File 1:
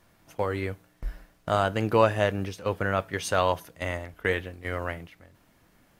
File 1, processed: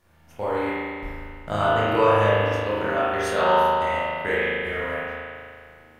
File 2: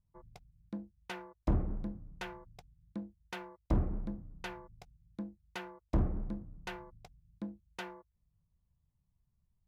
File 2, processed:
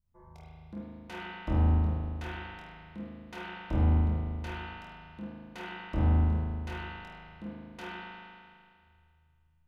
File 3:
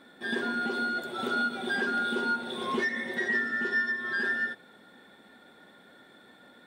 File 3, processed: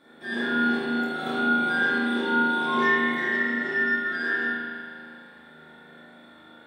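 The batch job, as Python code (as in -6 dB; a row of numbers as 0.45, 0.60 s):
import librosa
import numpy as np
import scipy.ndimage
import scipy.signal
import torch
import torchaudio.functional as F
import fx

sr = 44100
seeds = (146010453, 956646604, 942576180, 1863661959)

y = fx.room_flutter(x, sr, wall_m=4.3, rt60_s=0.4)
y = fx.rev_spring(y, sr, rt60_s=2.2, pass_ms=(38,), chirp_ms=80, drr_db=-8.0)
y = y * 10.0 ** (-5.0 / 20.0)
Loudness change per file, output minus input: +5.0, +8.5, +5.0 LU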